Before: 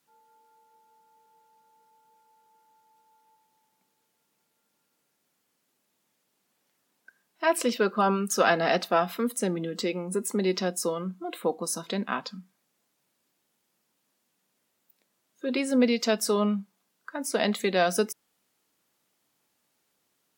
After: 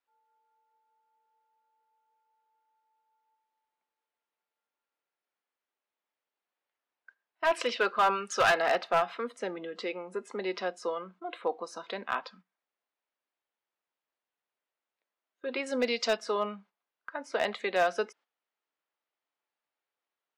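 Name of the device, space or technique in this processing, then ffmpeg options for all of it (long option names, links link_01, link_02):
walkie-talkie: -filter_complex "[0:a]asettb=1/sr,asplit=3[link_01][link_02][link_03];[link_01]atrim=end=15.664[link_04];[link_02]atrim=start=15.66:end=16.17,asetpts=PTS-STARTPTS,afade=type=in:duration=0.004:curve=qsin,afade=type=out:start_time=0.506:duration=0.004:curve=qsin,bass=frequency=250:gain=3,treble=frequency=4000:gain=14[link_05];[link_03]atrim=start=16.166[link_06];[link_04][link_05]acrossfade=duration=0.004:curve1=hsin:curve2=qsin[link_07];[link_07][link_06]acrossfade=duration=0.004:curve1=qsin:curve2=hsin,lowpass=9800,asettb=1/sr,asplit=3[link_08][link_09][link_10];[link_08]atrim=end=7.514[link_11];[link_09]atrim=start=7.51:end=8.62,asetpts=PTS-STARTPTS,afade=type=in:duration=0.004:curve=qsin,afade=type=out:start_time=1.106:duration=0.004:curve=qsin,highshelf=frequency=2000:gain=9[link_12];[link_10]atrim=start=8.616[link_13];[link_11][link_12]acrossfade=duration=0.004:curve1=hsin:curve2=qsin[link_14];[link_14][link_13]acrossfade=duration=0.004:curve1=qsin:curve2=hsin,highpass=540,lowpass=2800,asoftclip=type=hard:threshold=-18.5dB,agate=range=-11dB:threshold=-55dB:ratio=16:detection=peak"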